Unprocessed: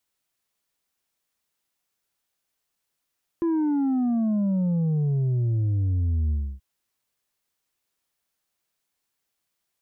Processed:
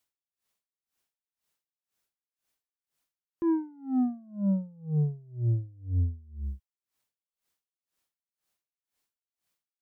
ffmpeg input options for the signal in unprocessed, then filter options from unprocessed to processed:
-f lavfi -i "aevalsrc='0.0891*clip((3.18-t)/0.29,0,1)*tanh(1.58*sin(2*PI*340*3.18/log(65/340)*(exp(log(65/340)*t/3.18)-1)))/tanh(1.58)':d=3.18:s=44100"
-af "aeval=exprs='val(0)*pow(10,-29*(0.5-0.5*cos(2*PI*2*n/s))/20)':c=same"

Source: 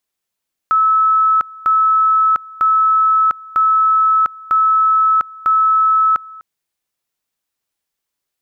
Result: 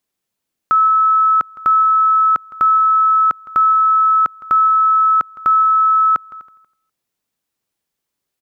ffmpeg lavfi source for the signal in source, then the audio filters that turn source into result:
-f lavfi -i "aevalsrc='pow(10,(-9.5-22.5*gte(mod(t,0.95),0.7))/20)*sin(2*PI*1300*t)':d=5.7:s=44100"
-af "equalizer=f=200:t=o:w=2.8:g=7,aecho=1:1:162|324|486:0.112|0.0381|0.013"

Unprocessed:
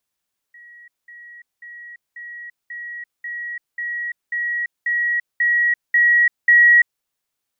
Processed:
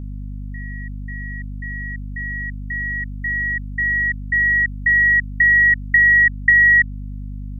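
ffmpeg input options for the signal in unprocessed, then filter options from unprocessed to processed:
-f lavfi -i "aevalsrc='pow(10,(-41+3*floor(t/0.54))/20)*sin(2*PI*1910*t)*clip(min(mod(t,0.54),0.34-mod(t,0.54))/0.005,0,1)':d=6.48:s=44100"
-af "equalizer=f=1.8k:t=o:w=0.29:g=9.5,acompressor=threshold=-11dB:ratio=5,aeval=exprs='val(0)+0.0398*(sin(2*PI*50*n/s)+sin(2*PI*2*50*n/s)/2+sin(2*PI*3*50*n/s)/3+sin(2*PI*4*50*n/s)/4+sin(2*PI*5*50*n/s)/5)':c=same"

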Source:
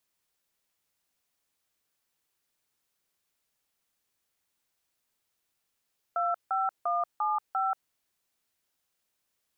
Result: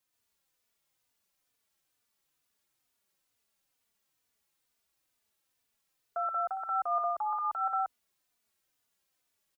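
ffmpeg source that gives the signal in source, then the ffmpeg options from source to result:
-f lavfi -i "aevalsrc='0.0398*clip(min(mod(t,0.347),0.184-mod(t,0.347))/0.002,0,1)*(eq(floor(t/0.347),0)*(sin(2*PI*697*mod(t,0.347))+sin(2*PI*1336*mod(t,0.347)))+eq(floor(t/0.347),1)*(sin(2*PI*770*mod(t,0.347))+sin(2*PI*1336*mod(t,0.347)))+eq(floor(t/0.347),2)*(sin(2*PI*697*mod(t,0.347))+sin(2*PI*1209*mod(t,0.347)))+eq(floor(t/0.347),3)*(sin(2*PI*852*mod(t,0.347))+sin(2*PI*1209*mod(t,0.347)))+eq(floor(t/0.347),4)*(sin(2*PI*770*mod(t,0.347))+sin(2*PI*1336*mod(t,0.347))))':d=1.735:s=44100"
-filter_complex "[0:a]asplit=2[a][b];[b]aecho=0:1:61.22|125.4:0.282|1[c];[a][c]amix=inputs=2:normalize=0,asplit=2[d][e];[e]adelay=3.3,afreqshift=-2.2[f];[d][f]amix=inputs=2:normalize=1"

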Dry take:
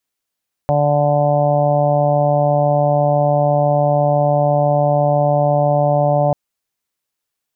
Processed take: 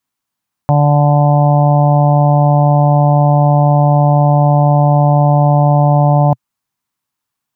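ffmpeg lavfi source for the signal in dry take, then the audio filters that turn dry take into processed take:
-f lavfi -i "aevalsrc='0.141*sin(2*PI*146*t)+0.0447*sin(2*PI*292*t)+0.0266*sin(2*PI*438*t)+0.178*sin(2*PI*584*t)+0.126*sin(2*PI*730*t)+0.0531*sin(2*PI*876*t)+0.02*sin(2*PI*1022*t)':d=5.64:s=44100"
-af "equalizer=f=125:t=o:w=1:g=9,equalizer=f=250:t=o:w=1:g=6,equalizer=f=500:t=o:w=1:g=-6,equalizer=f=1k:t=o:w=1:g=9"

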